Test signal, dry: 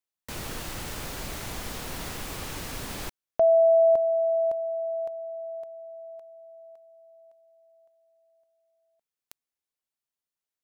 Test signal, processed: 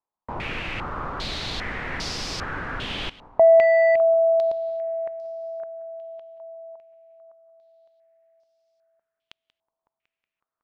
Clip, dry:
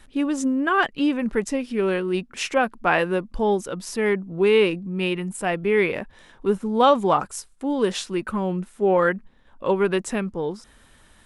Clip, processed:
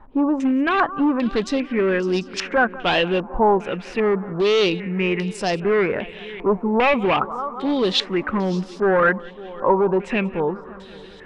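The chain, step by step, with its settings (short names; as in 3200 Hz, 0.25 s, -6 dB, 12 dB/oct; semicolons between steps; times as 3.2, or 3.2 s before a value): on a send: multi-head echo 0.185 s, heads first and third, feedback 57%, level -22 dB; on the sum: hard clip -18.5 dBFS; dynamic EQ 1600 Hz, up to -5 dB, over -38 dBFS, Q 1.2; stepped low-pass 2.5 Hz 950–5100 Hz; gain +3.5 dB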